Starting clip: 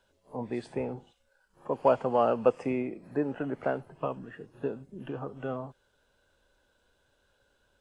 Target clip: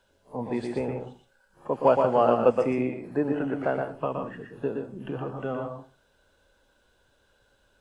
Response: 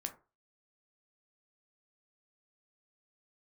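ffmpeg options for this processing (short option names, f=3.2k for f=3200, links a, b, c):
-filter_complex "[0:a]asplit=2[a][b];[1:a]atrim=start_sample=2205,adelay=119[c];[b][c]afir=irnorm=-1:irlink=0,volume=-2.5dB[d];[a][d]amix=inputs=2:normalize=0,volume=3dB"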